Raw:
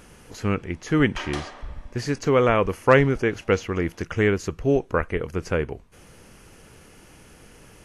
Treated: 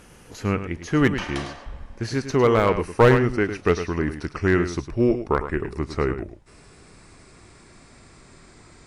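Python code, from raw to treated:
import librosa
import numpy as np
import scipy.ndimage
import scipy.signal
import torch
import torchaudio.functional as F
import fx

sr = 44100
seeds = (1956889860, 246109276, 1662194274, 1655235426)

p1 = fx.speed_glide(x, sr, from_pct=100, to_pct=77)
p2 = fx.cheby_harmonics(p1, sr, harmonics=(3,), levels_db=(-18,), full_scale_db=-3.0)
p3 = p2 + fx.echo_single(p2, sr, ms=105, db=-10.5, dry=0)
p4 = fx.slew_limit(p3, sr, full_power_hz=200.0)
y = p4 * librosa.db_to_amplitude(4.0)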